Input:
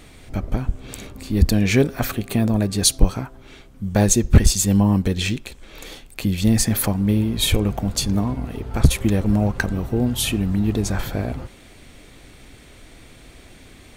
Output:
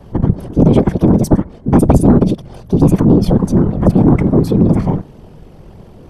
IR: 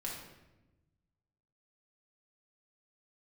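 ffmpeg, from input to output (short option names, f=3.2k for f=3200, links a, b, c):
-filter_complex "[0:a]lowshelf=f=370:g=5,afftfilt=real='hypot(re,im)*cos(2*PI*random(0))':imag='hypot(re,im)*sin(2*PI*random(1))':win_size=512:overlap=0.75,adynamicequalizer=threshold=0.02:dfrequency=130:dqfactor=1.4:tfrequency=130:tqfactor=1.4:attack=5:release=100:ratio=0.375:range=3:mode=boostabove:tftype=bell,aresample=32000,aresample=44100,asetrate=100989,aresample=44100,acrossover=split=2400[a][b];[a]aeval=exprs='1.19*sin(PI/2*3.55*val(0)/1.19)':c=same[c];[c][b]amix=inputs=2:normalize=0,asetrate=26222,aresample=44100,atempo=1.68179,volume=-3.5dB"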